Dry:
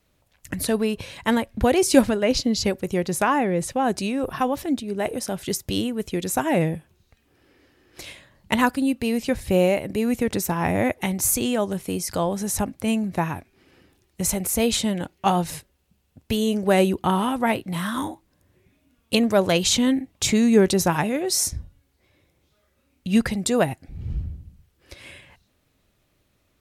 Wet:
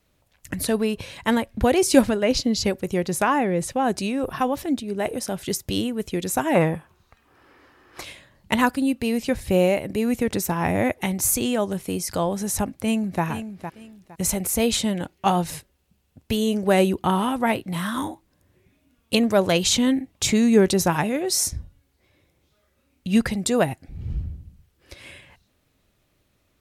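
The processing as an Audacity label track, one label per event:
6.550000	8.040000	bell 1100 Hz +14 dB 1.3 oct
12.660000	13.230000	echo throw 0.46 s, feedback 25%, level -10 dB

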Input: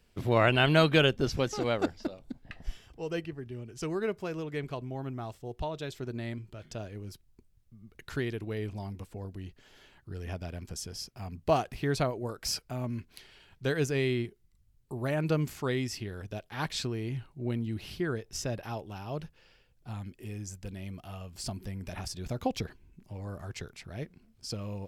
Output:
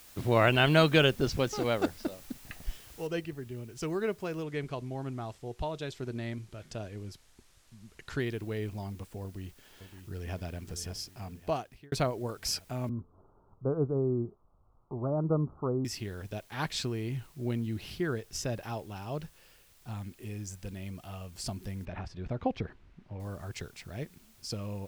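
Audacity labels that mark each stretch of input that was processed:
3.070000	3.070000	noise floor step -54 dB -63 dB
4.430000	8.200000	LPF 9200 Hz
9.230000	10.360000	echo throw 0.57 s, feedback 60%, level -9.5 dB
11.130000	11.920000	fade out
12.890000	15.850000	steep low-pass 1300 Hz 96 dB/oct
21.850000	23.200000	LPF 2300 Hz

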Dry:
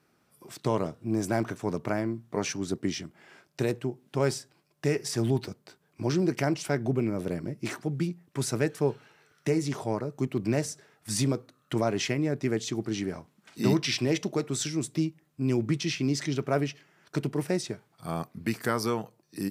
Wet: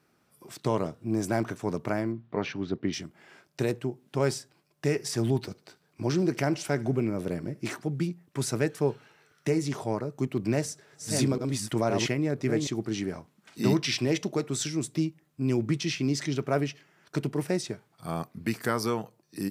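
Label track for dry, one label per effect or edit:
2.120000	2.930000	LPF 3800 Hz 24 dB/oct
5.390000	7.730000	thinning echo 74 ms, feedback 56%, level -21 dB
10.350000	12.670000	reverse delay 0.516 s, level -4 dB

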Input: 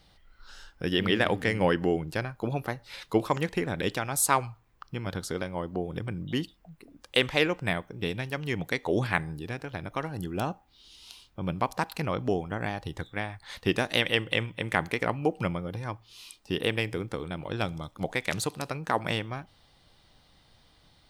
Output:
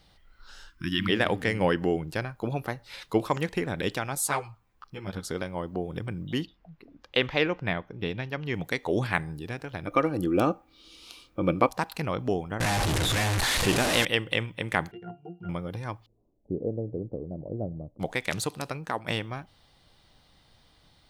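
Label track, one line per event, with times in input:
0.690000	1.090000	spectral delete 360–950 Hz
4.150000	5.250000	ensemble effect
6.430000	8.540000	running mean over 5 samples
9.870000	11.690000	small resonant body resonances 320/500/1200/2300 Hz, height 14 dB, ringing for 35 ms
12.600000	14.050000	delta modulation 64 kbps, step -19.5 dBFS
14.910000	15.490000	octave resonator F, decay 0.21 s
16.060000	18.000000	elliptic low-pass 630 Hz, stop band 80 dB
18.610000	19.070000	fade out equal-power, to -10 dB

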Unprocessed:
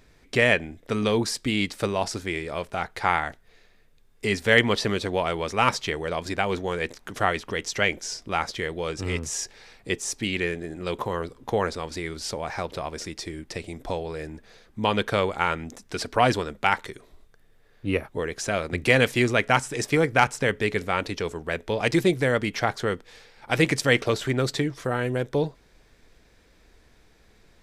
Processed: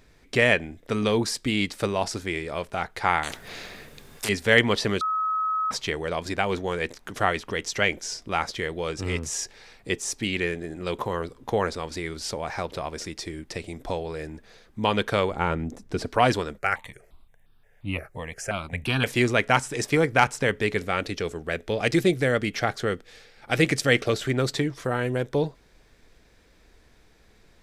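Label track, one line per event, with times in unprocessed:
3.230000	4.290000	spectral compressor 4:1
5.010000	5.710000	bleep 1280 Hz -22.5 dBFS
15.310000	16.070000	tilt shelf lows +7 dB, about 770 Hz
16.580000	19.060000	step phaser 5.7 Hz 930–2000 Hz
20.850000	24.350000	bell 960 Hz -9.5 dB 0.25 oct

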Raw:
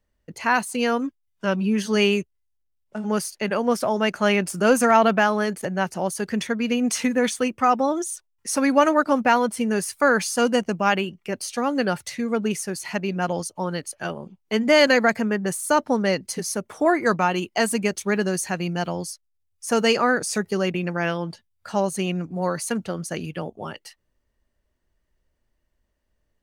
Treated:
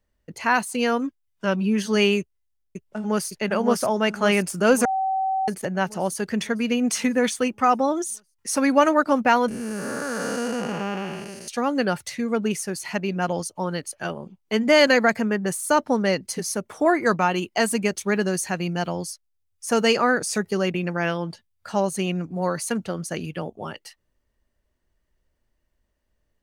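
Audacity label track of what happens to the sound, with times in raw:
2.190000	3.300000	echo throw 0.56 s, feedback 60%, level -3.5 dB
4.850000	5.480000	bleep 766 Hz -20.5 dBFS
9.480000	11.480000	time blur width 0.48 s

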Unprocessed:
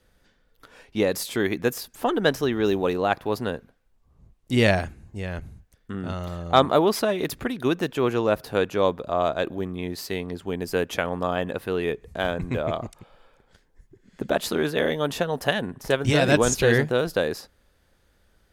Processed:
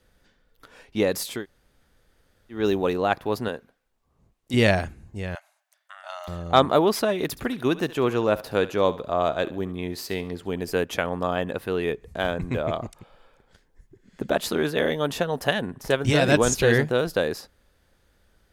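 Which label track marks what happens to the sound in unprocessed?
1.380000	2.570000	room tone, crossfade 0.16 s
3.480000	4.540000	low shelf 170 Hz -12 dB
5.350000	6.280000	brick-wall FIR high-pass 570 Hz
7.280000	10.720000	thinning echo 70 ms, feedback 37%, level -16 dB

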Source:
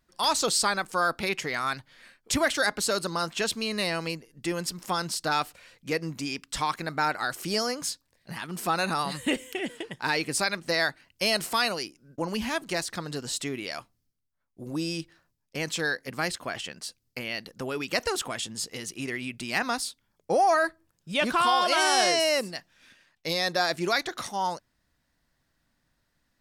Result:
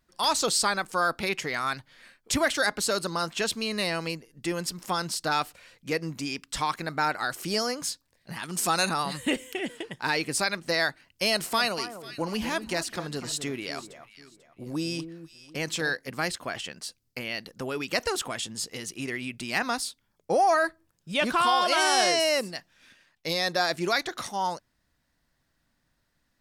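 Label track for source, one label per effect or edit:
8.430000	8.890000	bell 7400 Hz +12 dB 1.6 oct
11.280000	15.970000	echo with dull and thin repeats by turns 0.246 s, split 1400 Hz, feedback 51%, level -10 dB

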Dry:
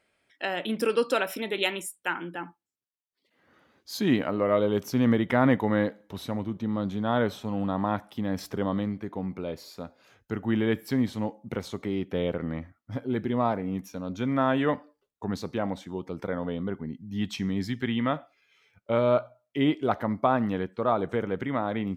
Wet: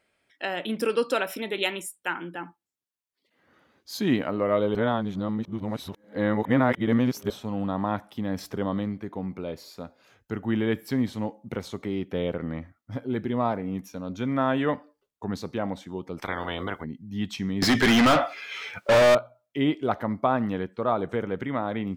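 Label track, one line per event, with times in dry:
4.750000	7.300000	reverse
16.170000	16.830000	spectral limiter ceiling under each frame's peak by 23 dB
17.620000	19.150000	overdrive pedal drive 36 dB, tone 3700 Hz, clips at -11 dBFS

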